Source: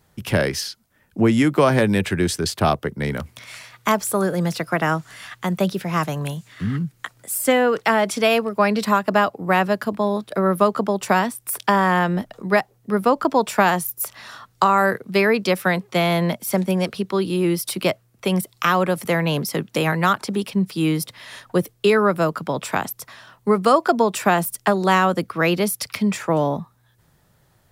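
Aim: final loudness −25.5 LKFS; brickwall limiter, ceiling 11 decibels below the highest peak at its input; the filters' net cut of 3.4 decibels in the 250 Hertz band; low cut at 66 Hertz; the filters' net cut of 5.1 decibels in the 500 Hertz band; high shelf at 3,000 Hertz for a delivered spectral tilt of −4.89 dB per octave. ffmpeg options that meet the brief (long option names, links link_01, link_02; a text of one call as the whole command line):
ffmpeg -i in.wav -af "highpass=66,equalizer=frequency=250:width_type=o:gain=-3.5,equalizer=frequency=500:width_type=o:gain=-5.5,highshelf=frequency=3000:gain=-3.5,volume=1dB,alimiter=limit=-14.5dB:level=0:latency=1" out.wav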